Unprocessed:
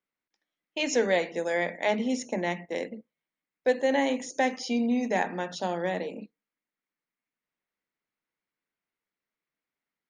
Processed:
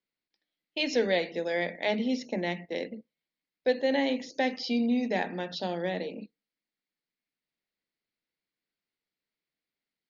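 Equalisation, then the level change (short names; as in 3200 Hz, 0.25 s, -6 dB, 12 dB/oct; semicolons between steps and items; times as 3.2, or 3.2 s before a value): synth low-pass 4600 Hz, resonance Q 3.6; air absorption 140 m; bell 1100 Hz -7.5 dB 1.1 oct; 0.0 dB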